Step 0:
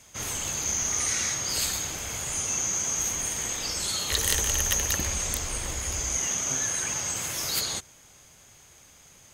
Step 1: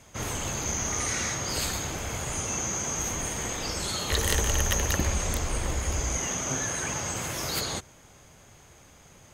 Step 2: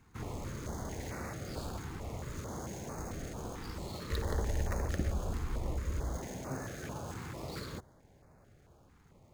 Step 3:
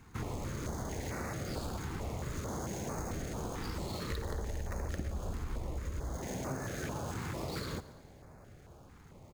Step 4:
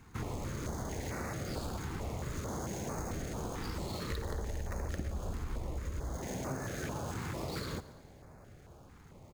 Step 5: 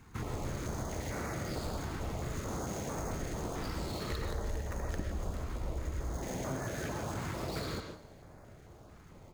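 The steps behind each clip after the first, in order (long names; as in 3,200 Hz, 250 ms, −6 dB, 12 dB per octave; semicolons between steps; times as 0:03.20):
high-shelf EQ 2,100 Hz −11 dB; level +6 dB
running median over 15 samples; notch on a step sequencer 4.5 Hz 600–3,200 Hz; level −5.5 dB
downward compressor 6 to 1, threshold −41 dBFS, peak gain reduction 13.5 dB; repeating echo 112 ms, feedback 59%, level −18 dB; level +6.5 dB
no processing that can be heard
convolution reverb, pre-delay 75 ms, DRR 4 dB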